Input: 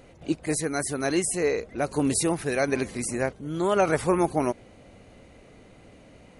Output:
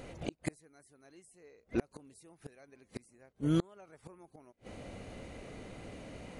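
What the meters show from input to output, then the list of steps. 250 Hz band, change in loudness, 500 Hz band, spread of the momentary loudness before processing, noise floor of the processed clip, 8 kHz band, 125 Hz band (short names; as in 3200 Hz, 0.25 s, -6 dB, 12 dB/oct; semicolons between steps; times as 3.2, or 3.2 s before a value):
-11.0 dB, -13.5 dB, -18.5 dB, 7 LU, -73 dBFS, -26.0 dB, -8.0 dB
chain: flipped gate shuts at -22 dBFS, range -37 dB; gain +3.5 dB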